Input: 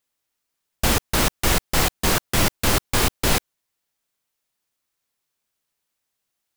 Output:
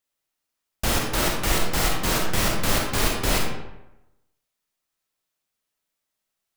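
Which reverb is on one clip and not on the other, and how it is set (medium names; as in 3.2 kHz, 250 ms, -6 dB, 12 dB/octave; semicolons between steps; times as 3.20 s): algorithmic reverb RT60 0.94 s, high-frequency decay 0.65×, pre-delay 5 ms, DRR -0.5 dB; trim -5 dB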